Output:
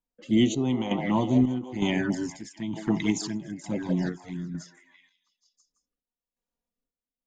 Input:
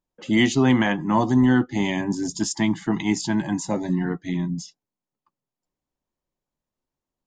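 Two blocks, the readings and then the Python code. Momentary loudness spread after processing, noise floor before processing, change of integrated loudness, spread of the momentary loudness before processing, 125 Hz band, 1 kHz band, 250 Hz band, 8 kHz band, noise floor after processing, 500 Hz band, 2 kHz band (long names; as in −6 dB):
13 LU, below −85 dBFS, −5.0 dB, 9 LU, −5.0 dB, −8.0 dB, −4.5 dB, −7.5 dB, below −85 dBFS, −4.5 dB, −9.5 dB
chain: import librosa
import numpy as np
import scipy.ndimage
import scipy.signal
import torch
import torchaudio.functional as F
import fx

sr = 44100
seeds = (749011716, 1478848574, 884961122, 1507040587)

y = fx.echo_stepped(x, sr, ms=165, hz=580.0, octaves=0.7, feedback_pct=70, wet_db=-1.5)
y = fx.env_flanger(y, sr, rest_ms=4.2, full_db=-18.0)
y = fx.chopper(y, sr, hz=1.1, depth_pct=60, duty_pct=60)
y = fx.rotary(y, sr, hz=0.9)
y = fx.end_taper(y, sr, db_per_s=210.0)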